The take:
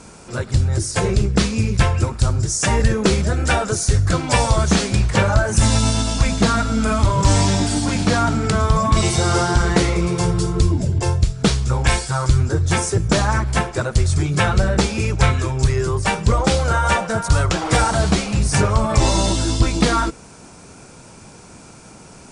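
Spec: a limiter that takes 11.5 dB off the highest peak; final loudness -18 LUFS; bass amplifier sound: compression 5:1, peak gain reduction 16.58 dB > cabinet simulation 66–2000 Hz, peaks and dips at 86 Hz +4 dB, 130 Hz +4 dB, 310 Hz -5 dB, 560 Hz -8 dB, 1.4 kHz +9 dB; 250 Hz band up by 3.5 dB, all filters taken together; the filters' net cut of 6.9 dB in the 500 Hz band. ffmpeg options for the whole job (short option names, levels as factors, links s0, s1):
-af "equalizer=f=250:t=o:g=7.5,equalizer=f=500:t=o:g=-8,alimiter=limit=0.237:level=0:latency=1,acompressor=threshold=0.0178:ratio=5,highpass=f=66:w=0.5412,highpass=f=66:w=1.3066,equalizer=f=86:t=q:w=4:g=4,equalizer=f=130:t=q:w=4:g=4,equalizer=f=310:t=q:w=4:g=-5,equalizer=f=560:t=q:w=4:g=-8,equalizer=f=1400:t=q:w=4:g=9,lowpass=f=2000:w=0.5412,lowpass=f=2000:w=1.3066,volume=7.94"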